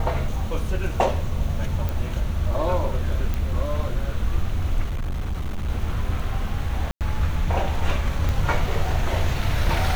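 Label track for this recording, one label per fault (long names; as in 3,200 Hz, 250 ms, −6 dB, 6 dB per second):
1.890000	1.890000	click
3.340000	3.340000	click
4.840000	5.700000	clipping −22.5 dBFS
6.910000	7.010000	drop-out 98 ms
8.290000	8.290000	click −13 dBFS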